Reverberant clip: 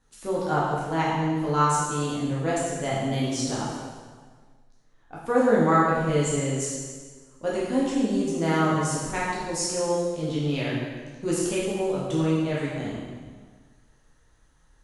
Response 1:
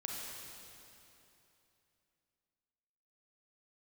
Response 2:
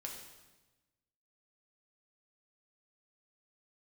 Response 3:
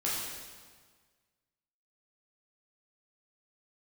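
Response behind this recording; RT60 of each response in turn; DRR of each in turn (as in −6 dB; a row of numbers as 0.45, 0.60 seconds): 3; 3.0, 1.1, 1.6 seconds; −2.5, −0.5, −7.0 decibels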